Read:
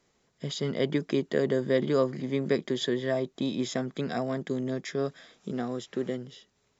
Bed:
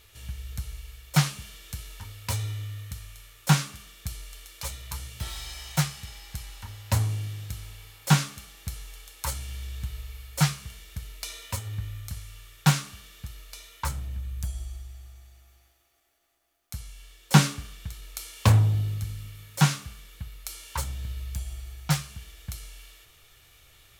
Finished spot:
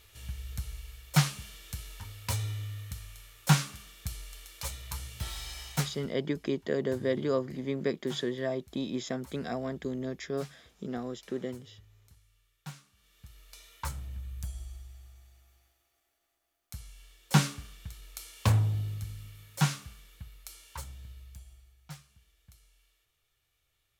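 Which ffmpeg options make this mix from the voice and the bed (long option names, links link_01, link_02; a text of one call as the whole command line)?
ffmpeg -i stem1.wav -i stem2.wav -filter_complex "[0:a]adelay=5350,volume=-4dB[link_01];[1:a]volume=15dB,afade=type=out:start_time=5.62:duration=0.53:silence=0.0891251,afade=type=in:start_time=12.94:duration=0.79:silence=0.133352,afade=type=out:start_time=19.83:duration=1.91:silence=0.177828[link_02];[link_01][link_02]amix=inputs=2:normalize=0" out.wav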